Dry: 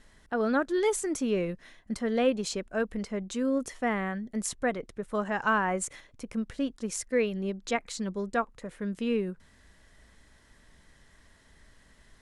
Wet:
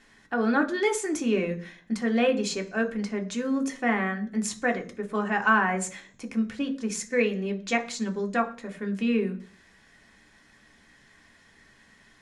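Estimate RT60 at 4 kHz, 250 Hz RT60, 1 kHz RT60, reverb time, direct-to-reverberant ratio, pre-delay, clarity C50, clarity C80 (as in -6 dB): 0.55 s, 0.60 s, 0.40 s, 0.45 s, 3.5 dB, 3 ms, 15.5 dB, 20.0 dB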